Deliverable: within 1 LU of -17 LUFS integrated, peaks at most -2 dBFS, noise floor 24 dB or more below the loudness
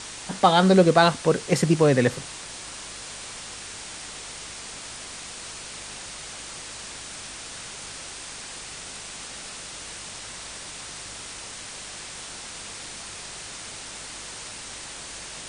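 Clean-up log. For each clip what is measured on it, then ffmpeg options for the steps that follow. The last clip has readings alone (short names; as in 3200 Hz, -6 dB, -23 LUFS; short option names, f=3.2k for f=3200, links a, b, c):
hum 50 Hz; harmonics up to 200 Hz; hum level -54 dBFS; noise floor -39 dBFS; noise floor target -52 dBFS; loudness -27.5 LUFS; peak -3.0 dBFS; loudness target -17.0 LUFS
-> -af "bandreject=f=50:t=h:w=4,bandreject=f=100:t=h:w=4,bandreject=f=150:t=h:w=4,bandreject=f=200:t=h:w=4"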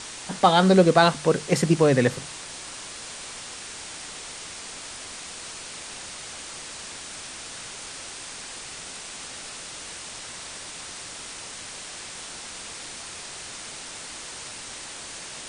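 hum none; noise floor -39 dBFS; noise floor target -52 dBFS
-> -af "afftdn=nr=13:nf=-39"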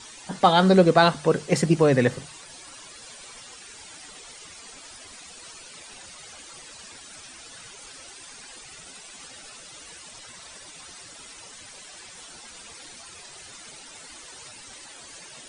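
noise floor -45 dBFS; loudness -20.0 LUFS; peak -3.0 dBFS; loudness target -17.0 LUFS
-> -af "volume=3dB,alimiter=limit=-2dB:level=0:latency=1"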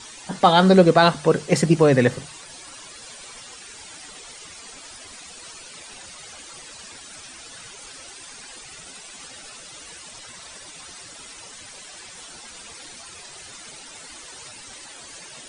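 loudness -17.0 LUFS; peak -2.0 dBFS; noise floor -42 dBFS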